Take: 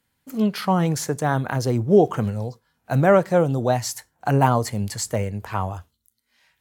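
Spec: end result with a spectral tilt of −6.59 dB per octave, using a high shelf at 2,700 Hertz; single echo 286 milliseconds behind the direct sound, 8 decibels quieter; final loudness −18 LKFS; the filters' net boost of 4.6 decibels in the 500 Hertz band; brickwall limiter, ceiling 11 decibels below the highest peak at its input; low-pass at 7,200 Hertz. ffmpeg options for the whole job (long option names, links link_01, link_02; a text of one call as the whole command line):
ffmpeg -i in.wav -af "lowpass=7200,equalizer=frequency=500:width_type=o:gain=6,highshelf=frequency=2700:gain=-8,alimiter=limit=-12.5dB:level=0:latency=1,aecho=1:1:286:0.398,volume=5.5dB" out.wav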